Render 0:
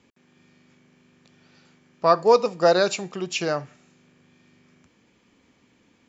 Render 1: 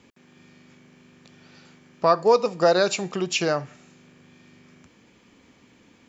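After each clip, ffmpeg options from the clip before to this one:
ffmpeg -i in.wav -af "acompressor=threshold=-31dB:ratio=1.5,volume=5.5dB" out.wav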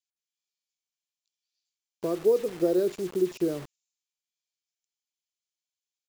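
ffmpeg -i in.wav -filter_complex "[0:a]firequalizer=gain_entry='entry(240,0);entry(350,12);entry(580,-5);entry(860,-16)':delay=0.05:min_phase=1,acrossover=split=3800[link_01][link_02];[link_01]acrusher=bits=5:mix=0:aa=0.000001[link_03];[link_03][link_02]amix=inputs=2:normalize=0,volume=-7.5dB" out.wav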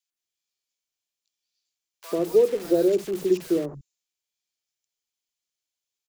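ffmpeg -i in.wav -filter_complex "[0:a]acrossover=split=180|1100[link_01][link_02][link_03];[link_02]adelay=90[link_04];[link_01]adelay=150[link_05];[link_05][link_04][link_03]amix=inputs=3:normalize=0,volume=4.5dB" out.wav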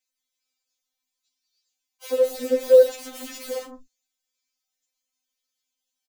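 ffmpeg -i in.wav -filter_complex "[0:a]asplit=2[link_01][link_02];[link_02]adelay=39,volume=-12dB[link_03];[link_01][link_03]amix=inputs=2:normalize=0,afftfilt=real='re*3.46*eq(mod(b,12),0)':imag='im*3.46*eq(mod(b,12),0)':win_size=2048:overlap=0.75,volume=6dB" out.wav

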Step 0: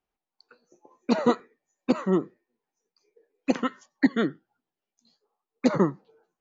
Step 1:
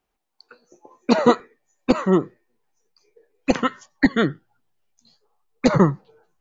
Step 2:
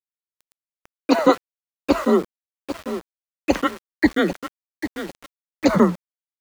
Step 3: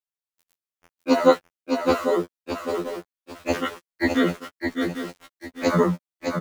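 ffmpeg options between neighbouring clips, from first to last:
ffmpeg -i in.wav -af "asubboost=boost=10:cutoff=83,volume=8dB" out.wav
ffmpeg -i in.wav -af "aecho=1:1:796|1592|2388|3184:0.282|0.0986|0.0345|0.0121,afreqshift=37,aeval=exprs='val(0)*gte(abs(val(0)),0.0237)':channel_layout=same" out.wav
ffmpeg -i in.wav -af "aecho=1:1:610:0.562,afftfilt=real='re*2*eq(mod(b,4),0)':imag='im*2*eq(mod(b,4),0)':win_size=2048:overlap=0.75" out.wav

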